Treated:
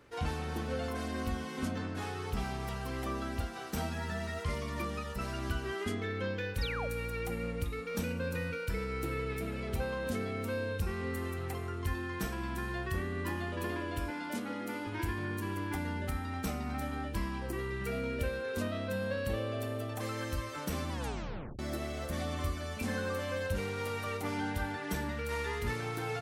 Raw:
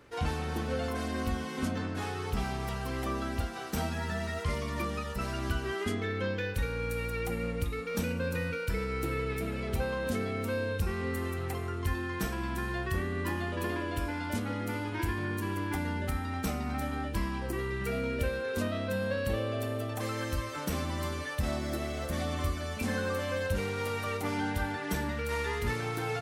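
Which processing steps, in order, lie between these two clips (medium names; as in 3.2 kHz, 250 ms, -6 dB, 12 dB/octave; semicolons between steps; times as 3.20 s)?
6.61–6.88 s: painted sound fall 470–5500 Hz -37 dBFS; 14.10–14.87 s: high-pass 170 Hz 24 dB/octave; 20.92 s: tape stop 0.67 s; trim -3 dB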